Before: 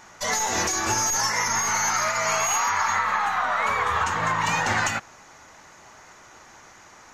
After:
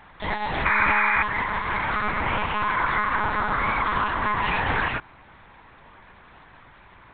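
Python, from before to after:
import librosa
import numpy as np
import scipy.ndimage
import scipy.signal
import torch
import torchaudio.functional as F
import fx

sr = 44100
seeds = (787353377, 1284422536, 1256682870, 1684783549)

y = fx.lpc_monotone(x, sr, seeds[0], pitch_hz=210.0, order=8)
y = fx.spec_paint(y, sr, seeds[1], shape='noise', start_s=0.65, length_s=0.58, low_hz=830.0, high_hz=2500.0, level_db=-21.0)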